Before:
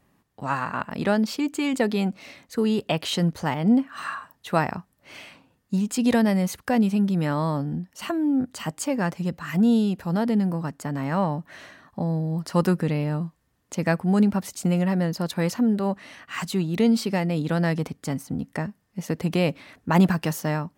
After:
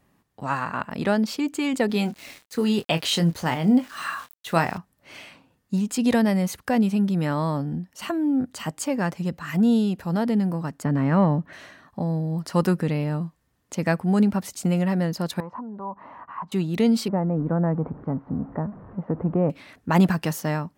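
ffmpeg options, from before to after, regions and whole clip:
-filter_complex "[0:a]asettb=1/sr,asplit=3[a][b][c];[a]atrim=end=1.874[d];[b]atrim=start=1.87:end=4.78,asetpts=PTS-STARTPTS,afade=t=in:d=0.004:c=qsin,afade=t=out:st=2.906:d=0.004:c=qsin,aeval=exprs='val(0)*gte(abs(val(0)),0.00596)':c=same,asplit=2[e][f];[f]adelay=24,volume=-9.5dB[g];[e][g]amix=inputs=2:normalize=0,atrim=end_sample=128331,adynamicequalizer=threshold=0.0112:dfrequency=1800:dqfactor=0.7:tfrequency=1800:tqfactor=0.7:attack=5:release=100:ratio=0.375:range=2:mode=boostabove:tftype=highshelf[h];[c]atrim=start=4.776[i];[d][h]acrossfade=d=0.004:c1=hsin:c2=qsin[j];[j][i]acrossfade=d=0.004:c1=qsin:c2=hsin,asettb=1/sr,asplit=3[k][l][m];[k]atrim=end=10.844[n];[l]atrim=start=10.84:end=11.53,asetpts=PTS-STARTPTS,afade=t=in:d=0.004:c=qsin,afade=t=out:st=0.686:d=0.004:c=qsin,acontrast=77,lowpass=f=1.3k:p=1,equalizer=f=790:w=1.6:g=-5.5[o];[m]atrim=start=11.526[p];[n][o]acrossfade=d=0.004:c1=hsin:c2=qsin[q];[q][p]acrossfade=d=0.004:c1=qsin:c2=hsin,asettb=1/sr,asplit=3[r][s][t];[r]atrim=end=15.404[u];[s]atrim=start=15.4:end=16.52,asetpts=PTS-STARTPTS,afade=t=in:d=0.004:c=qsin,afade=t=out:st=1.116:d=0.004:c=qsin,acompressor=threshold=-40dB:ratio=3:attack=3.2:release=140:knee=1:detection=peak,lowpass=f=1k:t=q:w=7.9[v];[t]atrim=start=16.516[w];[u][v]acrossfade=d=0.004:c1=hsin:c2=qsin[x];[x][w]acrossfade=d=0.004:c1=qsin:c2=hsin,asettb=1/sr,asplit=3[y][z][aa];[y]atrim=end=17.084[ab];[z]atrim=start=17.08:end=19.5,asetpts=PTS-STARTPTS,afade=t=in:d=0.004:c=qsin,afade=t=out:st=2.416:d=0.004:c=qsin,aeval=exprs='val(0)+0.5*0.0158*sgn(val(0))':c=same,lowpass=f=1.2k:w=0.5412,lowpass=f=1.2k:w=1.3066[ac];[aa]atrim=start=19.496[ad];[ab][ac]acrossfade=d=0.004:c1=hsin:c2=qsin[ae];[ae][ad]acrossfade=d=0.004:c1=qsin:c2=hsin"

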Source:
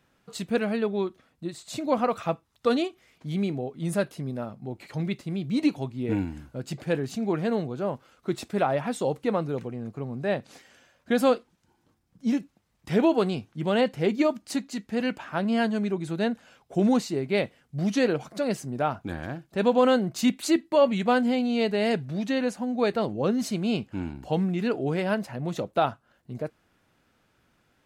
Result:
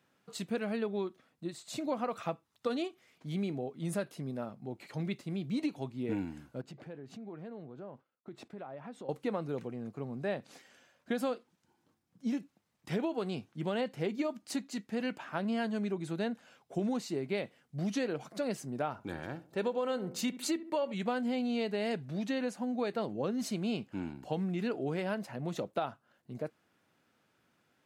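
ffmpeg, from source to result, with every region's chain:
-filter_complex "[0:a]asettb=1/sr,asplit=3[a][b][c];[a]atrim=end=6.614[d];[b]atrim=start=6.61:end=9.09,asetpts=PTS-STARTPTS,afade=t=in:d=0.004:c=qsin,afade=t=out:st=2.476:d=0.004:c=qsin,agate=range=-33dB:threshold=-46dB:ratio=3:release=100:detection=peak,lowpass=f=1.6k:p=1,acompressor=threshold=-39dB:ratio=4:attack=3.2:release=140:knee=1:detection=peak[e];[c]atrim=start=9.086[f];[d][e]acrossfade=d=0.004:c1=hsin:c2=qsin[g];[g][f]acrossfade=d=0.004:c1=qsin:c2=hsin,asettb=1/sr,asplit=3[h][i][j];[h]atrim=end=18.914[k];[i]atrim=start=18.91:end=20.94,asetpts=PTS-STARTPTS,afade=t=in:d=0.004:c=qsin,afade=t=out:st=2.026:d=0.004:c=qsin,aecho=1:1:2.2:0.3,atrim=end_sample=89523,asplit=2[l][m];[m]adelay=70,lowpass=f=1.1k:p=1,volume=-15.5dB,asplit=2[n][o];[o]adelay=70,lowpass=f=1.1k:p=1,volume=0.47,asplit=2[p][q];[q]adelay=70,lowpass=f=1.1k:p=1,volume=0.47,asplit=2[r][s];[s]adelay=70,lowpass=f=1.1k:p=1,volume=0.47[t];[l][n][p][r][t]amix=inputs=5:normalize=0,atrim=end_sample=89523[u];[j]atrim=start=20.936[v];[k][u]acrossfade=d=0.004:c1=hsin:c2=qsin[w];[w][v]acrossfade=d=0.004:c1=qsin:c2=hsin,highpass=130,acompressor=threshold=-24dB:ratio=10,volume=-5dB"

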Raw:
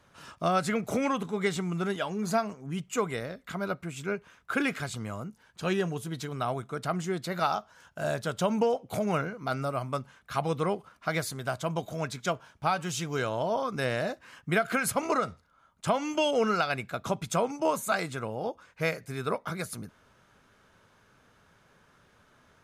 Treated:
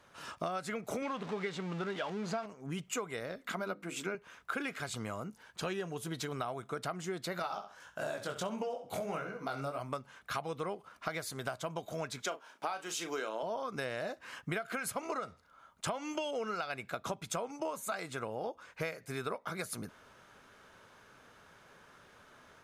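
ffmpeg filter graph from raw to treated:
-filter_complex "[0:a]asettb=1/sr,asplit=3[a][b][c];[a]atrim=end=1.024[d];[b]atrim=start=1.02:end=2.46,asetpts=PTS-STARTPTS,afade=t=in:d=0.004:c=qsin,afade=t=out:st=1.436:d=0.004:c=qsin,aeval=exprs='val(0)+0.5*0.0251*sgn(val(0))':c=same,highpass=100,lowpass=4.6k[e];[c]atrim=start=2.456[f];[d][e]acrossfade=d=0.004:c1=hsin:c2=qsin[g];[g][f]acrossfade=d=0.004:c1=qsin:c2=hsin,asettb=1/sr,asplit=3[h][i][j];[h]atrim=end=3.384[k];[i]atrim=start=3.38:end=4.15,asetpts=PTS-STARTPTS,afade=t=in:d=0.004:c=qsin,afade=t=out:st=0.766:d=0.004:c=qsin,lowshelf=f=170:t=q:w=3:g=-6,bandreject=f=50:t=h:w=6,bandreject=f=100:t=h:w=6,bandreject=f=150:t=h:w=6,bandreject=f=200:t=h:w=6,bandreject=f=250:t=h:w=6,bandreject=f=300:t=h:w=6,bandreject=f=350:t=h:w=6,bandreject=f=400:t=h:w=6,bandreject=f=450:t=h:w=6,bandreject=f=500:t=h:w=6[l];[j]atrim=start=4.146[m];[k][l]acrossfade=d=0.004:c1=hsin:c2=qsin[n];[n][m]acrossfade=d=0.004:c1=qsin:c2=hsin,asettb=1/sr,asplit=3[o][p][q];[o]atrim=end=7.424[r];[p]atrim=start=7.42:end=9.8,asetpts=PTS-STARTPTS,afade=t=in:d=0.004:c=qsin,afade=t=out:st=2.376:d=0.004:c=qsin,flanger=delay=15.5:depth=6.8:speed=1.6,aecho=1:1:66|132|198:0.251|0.0578|0.0133,atrim=end_sample=104958[s];[q]atrim=start=9.796[t];[r][s]acrossfade=d=0.004:c1=hsin:c2=qsin[u];[u][t]acrossfade=d=0.004:c1=qsin:c2=hsin,asettb=1/sr,asplit=3[v][w][x];[v]atrim=end=12.224[y];[w]atrim=start=12.22:end=13.43,asetpts=PTS-STARTPTS,afade=t=in:d=0.004:c=qsin,afade=t=out:st=1.206:d=0.004:c=qsin,highpass=f=240:w=0.5412,highpass=f=240:w=1.3066,asplit=2[z][aa];[aa]adelay=36,volume=-9.5dB[ab];[z][ab]amix=inputs=2:normalize=0,atrim=end_sample=53361[ac];[x]atrim=start=13.426[ad];[y][ac]acrossfade=d=0.004:c1=hsin:c2=qsin[ae];[ae][ad]acrossfade=d=0.004:c1=qsin:c2=hsin,dynaudnorm=f=190:g=3:m=3dB,bass=f=250:g=-7,treble=f=4k:g=-1,acompressor=threshold=-36dB:ratio=6,volume=1dB"

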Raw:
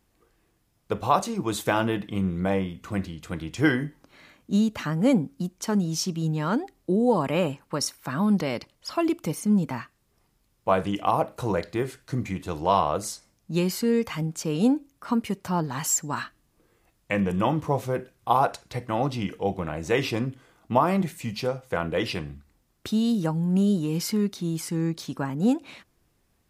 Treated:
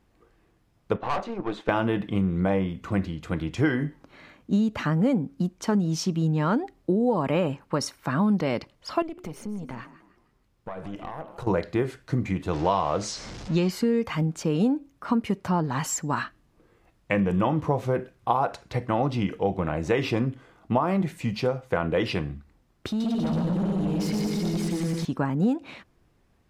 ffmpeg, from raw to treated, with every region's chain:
-filter_complex "[0:a]asettb=1/sr,asplit=3[a][b][c];[a]atrim=end=0.964[d];[b]atrim=start=0.96:end=1.69,asetpts=PTS-STARTPTS,afade=t=in:d=0.004:c=qsin,afade=t=out:st=0.726:d=0.004:c=qsin,highpass=270,lowpass=3.1k,aeval=exprs='(tanh(20*val(0)+0.65)-tanh(0.65))/20':c=same[e];[c]atrim=start=1.686[f];[d][e]acrossfade=d=0.004:c1=hsin:c2=qsin[g];[g][f]acrossfade=d=0.004:c1=qsin:c2=hsin,asettb=1/sr,asplit=3[h][i][j];[h]atrim=end=9.024[k];[i]atrim=start=9.02:end=11.47,asetpts=PTS-STARTPTS,afade=t=in:d=0.004:c=qsin,afade=t=out:st=2.446:d=0.004:c=qsin,acompressor=threshold=-33dB:ratio=6:attack=3.2:release=140:knee=1:detection=peak,asplit=5[l][m][n][o][p];[m]adelay=155,afreqshift=36,volume=-14dB[q];[n]adelay=310,afreqshift=72,volume=-22.6dB[r];[o]adelay=465,afreqshift=108,volume=-31.3dB[s];[p]adelay=620,afreqshift=144,volume=-39.9dB[t];[l][q][r][s][t]amix=inputs=5:normalize=0,atrim=end_sample=108045,aeval=exprs='(tanh(31.6*val(0)+0.65)-tanh(0.65))/31.6':c=same[u];[j]atrim=start=11.466[v];[k][u]acrossfade=d=0.004:c1=hsin:c2=qsin[w];[w][v]acrossfade=d=0.004:c1=qsin:c2=hsin,asettb=1/sr,asplit=3[x][y][z];[x]atrim=end=12.534[aa];[y]atrim=start=12.53:end=13.7,asetpts=PTS-STARTPTS,afade=t=in:d=0.004:c=qsin,afade=t=out:st=1.166:d=0.004:c=qsin,aeval=exprs='val(0)+0.5*0.0158*sgn(val(0))':c=same,lowpass=f=6.1k:w=0.5412,lowpass=f=6.1k:w=1.3066,aemphasis=mode=production:type=50fm[ab];[z]atrim=start=13.696[ac];[aa][ab]acrossfade=d=0.004:c1=hsin:c2=qsin[ad];[ad][ac]acrossfade=d=0.004:c1=qsin:c2=hsin,asettb=1/sr,asplit=3[ae][af][ag];[ae]atrim=end=22.884[ah];[af]atrim=start=22.88:end=25.05,asetpts=PTS-STARTPTS,afade=t=in:d=0.004:c=qsin,afade=t=out:st=2.166:d=0.004:c=qsin,acompressor=threshold=-28dB:ratio=6:attack=3.2:release=140:knee=1:detection=peak,aecho=1:1:120|222|308.7|382.4|445|498.3:0.794|0.631|0.501|0.398|0.316|0.251,atrim=end_sample=95697,asoftclip=type=hard:threshold=-27dB[ai];[ag]atrim=start=25.046[aj];[ah][ai]acrossfade=d=0.004:c1=hsin:c2=qsin[ak];[ak][aj]acrossfade=d=0.004:c1=qsin:c2=hsin,lowpass=f=2.4k:p=1,acompressor=threshold=-24dB:ratio=5,volume=4.5dB"

